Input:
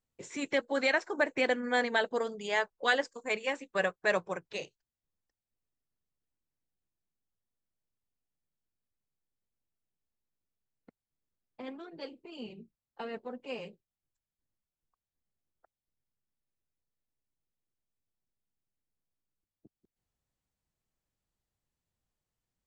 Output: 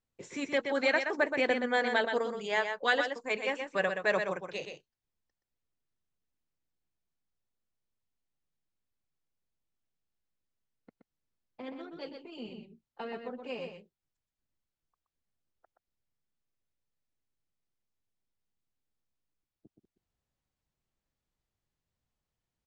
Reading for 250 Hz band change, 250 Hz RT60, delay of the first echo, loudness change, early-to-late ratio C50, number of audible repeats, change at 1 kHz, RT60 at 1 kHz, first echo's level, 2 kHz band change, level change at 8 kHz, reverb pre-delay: +0.5 dB, no reverb audible, 124 ms, +1.0 dB, no reverb audible, 1, +1.0 dB, no reverb audible, −6.5 dB, +0.5 dB, can't be measured, no reverb audible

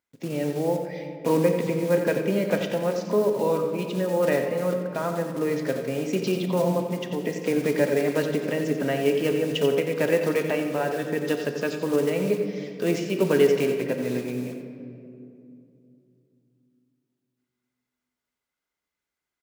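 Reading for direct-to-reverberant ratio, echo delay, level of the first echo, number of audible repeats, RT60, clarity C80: 4.0 dB, 89 ms, −9.5 dB, 1, 2.7 s, 5.5 dB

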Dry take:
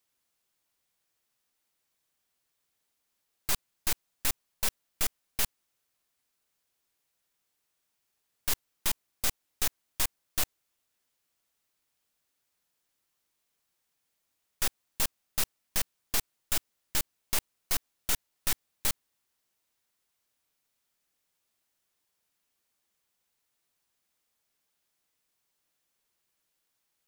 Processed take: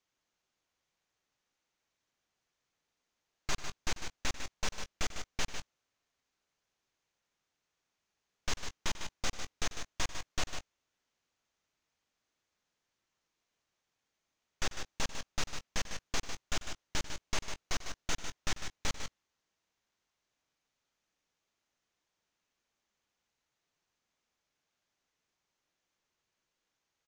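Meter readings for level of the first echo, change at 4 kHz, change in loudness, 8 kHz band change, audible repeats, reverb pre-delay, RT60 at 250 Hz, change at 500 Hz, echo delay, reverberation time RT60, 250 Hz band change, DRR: −15.5 dB, −2.5 dB, −7.0 dB, −7.0 dB, 2, no reverb audible, no reverb audible, +0.5 dB, 93 ms, no reverb audible, +0.5 dB, no reverb audible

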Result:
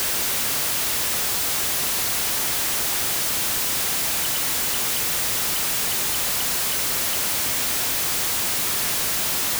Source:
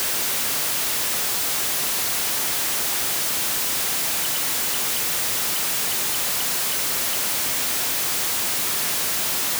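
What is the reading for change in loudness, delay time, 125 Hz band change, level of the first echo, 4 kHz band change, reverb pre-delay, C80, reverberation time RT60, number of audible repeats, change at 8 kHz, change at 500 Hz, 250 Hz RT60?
0.0 dB, no echo audible, +3.5 dB, no echo audible, 0.0 dB, no reverb audible, no reverb audible, no reverb audible, no echo audible, 0.0 dB, +0.5 dB, no reverb audible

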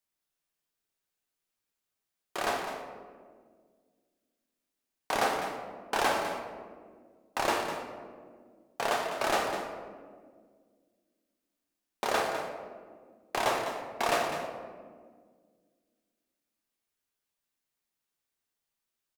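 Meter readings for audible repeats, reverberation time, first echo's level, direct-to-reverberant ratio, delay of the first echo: 1, 1.8 s, −10.5 dB, 0.5 dB, 203 ms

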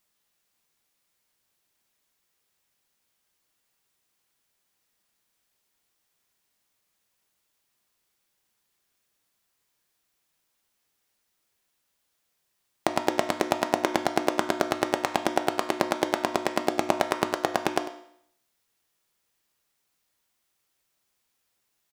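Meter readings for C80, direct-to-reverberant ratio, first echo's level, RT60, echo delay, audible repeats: 11.5 dB, 5.5 dB, −16.0 dB, 0.65 s, 98 ms, 1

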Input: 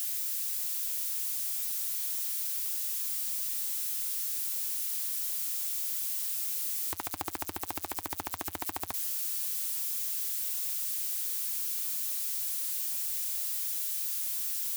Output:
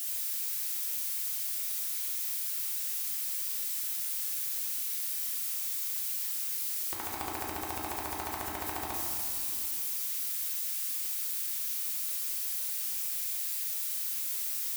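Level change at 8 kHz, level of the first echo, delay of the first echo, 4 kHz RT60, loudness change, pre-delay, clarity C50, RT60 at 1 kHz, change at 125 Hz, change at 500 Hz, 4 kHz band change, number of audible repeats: −1.0 dB, no echo audible, no echo audible, 1.4 s, −0.5 dB, 5 ms, −0.5 dB, 2.4 s, +3.0 dB, +3.5 dB, +0.5 dB, no echo audible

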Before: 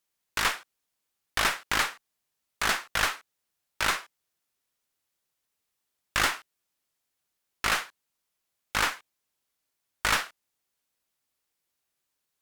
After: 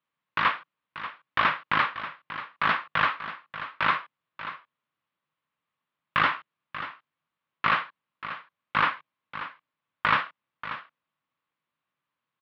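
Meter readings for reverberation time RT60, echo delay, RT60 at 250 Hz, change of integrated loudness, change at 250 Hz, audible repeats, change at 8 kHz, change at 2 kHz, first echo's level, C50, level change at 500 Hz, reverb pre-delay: no reverb audible, 586 ms, no reverb audible, 0.0 dB, +2.5 dB, 1, below −30 dB, +2.0 dB, −12.5 dB, no reverb audible, 0.0 dB, no reverb audible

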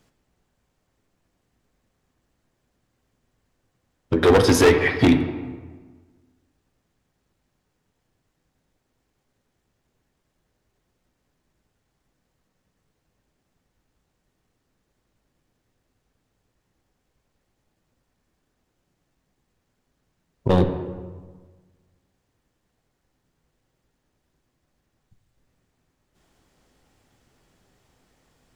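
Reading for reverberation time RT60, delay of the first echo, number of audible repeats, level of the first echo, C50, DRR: 1.4 s, no echo audible, no echo audible, no echo audible, 8.5 dB, 6.0 dB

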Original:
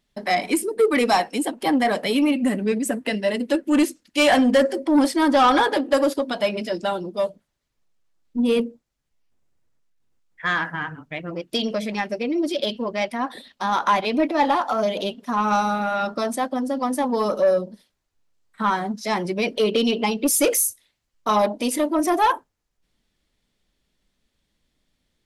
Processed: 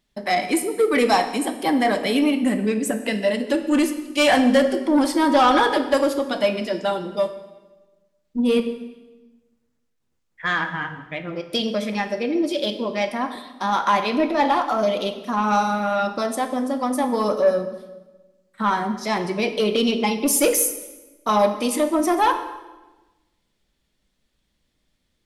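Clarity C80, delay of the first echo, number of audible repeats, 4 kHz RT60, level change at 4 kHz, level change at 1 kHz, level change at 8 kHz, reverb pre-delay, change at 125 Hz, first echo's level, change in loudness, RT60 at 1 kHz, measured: 12.0 dB, no echo audible, no echo audible, 1.0 s, +0.5 dB, +0.5 dB, +0.5 dB, 3 ms, +1.0 dB, no echo audible, +0.5 dB, 1.1 s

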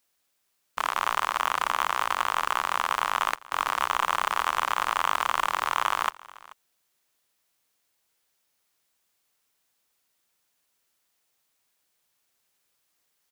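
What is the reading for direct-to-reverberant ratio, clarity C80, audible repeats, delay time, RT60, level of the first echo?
no reverb audible, no reverb audible, 1, 434 ms, no reverb audible, −21.5 dB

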